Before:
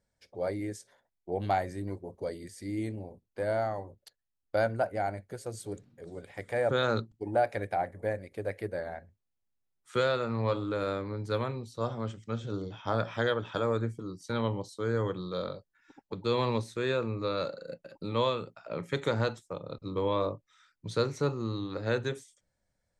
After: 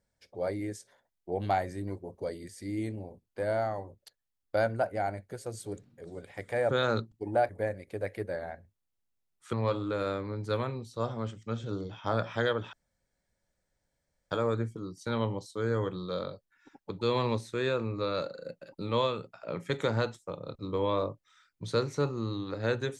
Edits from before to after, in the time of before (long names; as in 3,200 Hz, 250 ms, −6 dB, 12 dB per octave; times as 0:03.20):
0:07.49–0:07.93: remove
0:09.97–0:10.34: remove
0:13.54: splice in room tone 1.58 s